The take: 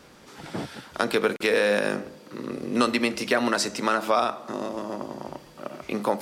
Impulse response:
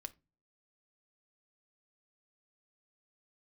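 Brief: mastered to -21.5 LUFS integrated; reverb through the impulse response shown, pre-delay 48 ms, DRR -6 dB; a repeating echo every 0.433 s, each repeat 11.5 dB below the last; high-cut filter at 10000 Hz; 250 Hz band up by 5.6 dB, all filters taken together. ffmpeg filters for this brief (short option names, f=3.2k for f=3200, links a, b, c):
-filter_complex "[0:a]lowpass=10k,equalizer=f=250:t=o:g=6.5,aecho=1:1:433|866|1299:0.266|0.0718|0.0194,asplit=2[a][b];[1:a]atrim=start_sample=2205,adelay=48[c];[b][c]afir=irnorm=-1:irlink=0,volume=10.5dB[d];[a][d]amix=inputs=2:normalize=0,volume=-5dB"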